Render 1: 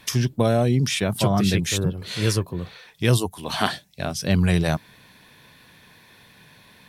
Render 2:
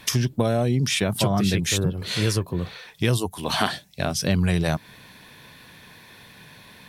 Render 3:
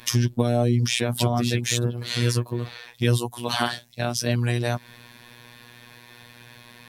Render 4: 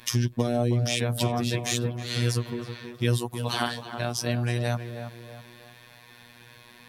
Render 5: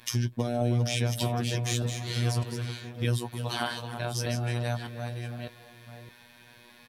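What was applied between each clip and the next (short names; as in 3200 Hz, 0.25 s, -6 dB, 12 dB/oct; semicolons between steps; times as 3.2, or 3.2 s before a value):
compressor 2.5:1, threshold -24 dBFS, peak gain reduction 8 dB; gain +4 dB
robotiser 120 Hz; in parallel at -6.5 dB: soft clip -11.5 dBFS, distortion -16 dB; on the sum: gain -1.5 dB
tape echo 0.321 s, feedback 49%, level -7 dB, low-pass 1400 Hz; gain -3.5 dB
reverse delay 0.609 s, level -7 dB; doubler 18 ms -12.5 dB; gain -4 dB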